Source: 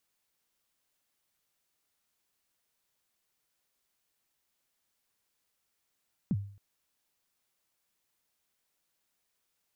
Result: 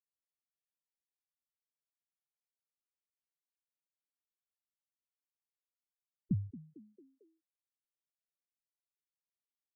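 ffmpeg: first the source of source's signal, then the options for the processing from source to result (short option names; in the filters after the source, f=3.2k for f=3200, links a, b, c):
-f lavfi -i "aevalsrc='0.0708*pow(10,-3*t/0.5)*sin(2*PI*(240*0.043/log(100/240)*(exp(log(100/240)*min(t,0.043)/0.043)-1)+100*max(t-0.043,0)))':d=0.27:s=44100"
-filter_complex "[0:a]afftfilt=real='re*gte(hypot(re,im),0.0447)':imag='im*gte(hypot(re,im),0.0447)':win_size=1024:overlap=0.75,asplit=5[a][b][c][d][e];[b]adelay=224,afreqshift=56,volume=-17dB[f];[c]adelay=448,afreqshift=112,volume=-23.4dB[g];[d]adelay=672,afreqshift=168,volume=-29.8dB[h];[e]adelay=896,afreqshift=224,volume=-36.1dB[i];[a][f][g][h][i]amix=inputs=5:normalize=0"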